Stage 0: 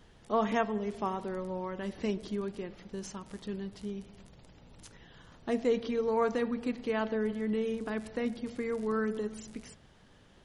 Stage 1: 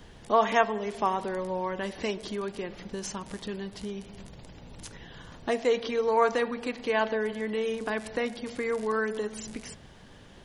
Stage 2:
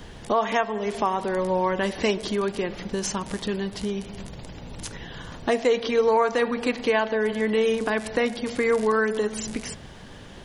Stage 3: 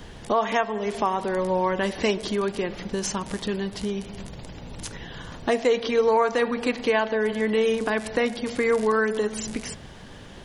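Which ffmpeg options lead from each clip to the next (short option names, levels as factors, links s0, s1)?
-filter_complex "[0:a]bandreject=f=1300:w=16,acrossover=split=480|2000[s0][s1][s2];[s0]acompressor=threshold=0.00562:ratio=5[s3];[s3][s1][s2]amix=inputs=3:normalize=0,volume=2.66"
-af "alimiter=limit=0.106:level=0:latency=1:release=381,volume=2.51"
-ar 44100 -c:a sbc -b:a 192k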